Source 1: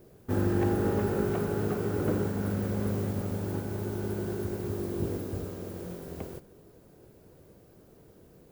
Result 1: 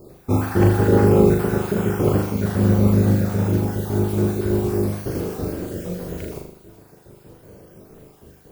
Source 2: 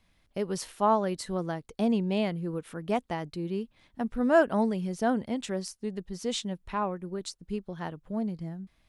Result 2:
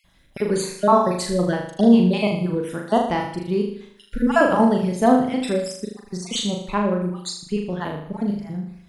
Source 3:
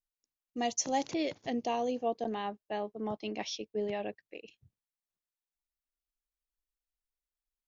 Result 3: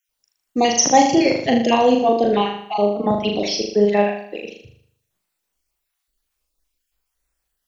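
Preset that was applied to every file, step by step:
time-frequency cells dropped at random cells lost 39%
on a send: flutter between parallel walls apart 6.7 metres, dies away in 0.63 s
on the sum: normalise the peak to −1.5 dBFS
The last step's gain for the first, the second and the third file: +10.0, +9.5, +17.0 decibels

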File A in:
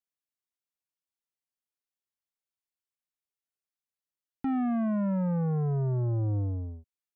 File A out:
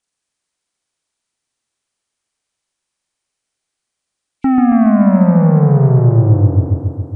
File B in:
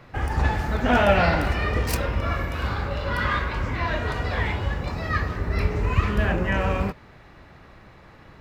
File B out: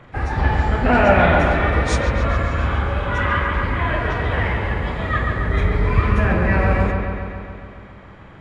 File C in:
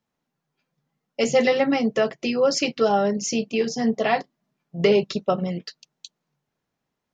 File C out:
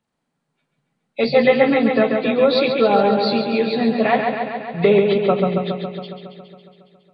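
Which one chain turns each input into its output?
hearing-aid frequency compression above 2,100 Hz 1.5 to 1
delay with a low-pass on its return 138 ms, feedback 69%, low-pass 3,700 Hz, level −4.5 dB
normalise the peak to −2 dBFS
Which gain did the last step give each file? +16.0, +3.0, +3.5 decibels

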